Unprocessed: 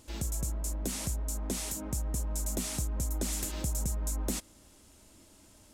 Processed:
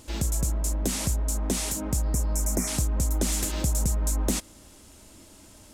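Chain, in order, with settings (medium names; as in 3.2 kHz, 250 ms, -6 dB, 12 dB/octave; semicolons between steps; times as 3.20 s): spectral replace 2.06–2.65 s, 2.4–5.2 kHz before; loudspeaker Doppler distortion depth 0.11 ms; trim +7.5 dB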